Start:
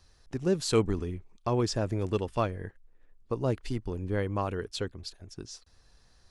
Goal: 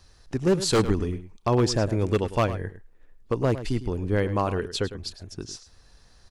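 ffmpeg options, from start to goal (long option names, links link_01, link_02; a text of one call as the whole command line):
ffmpeg -i in.wav -filter_complex "[0:a]aeval=exprs='0.106*(abs(mod(val(0)/0.106+3,4)-2)-1)':channel_layout=same,asplit=2[link_01][link_02];[link_02]adelay=105,volume=-13dB,highshelf=frequency=4000:gain=-2.36[link_03];[link_01][link_03]amix=inputs=2:normalize=0,volume=6dB" out.wav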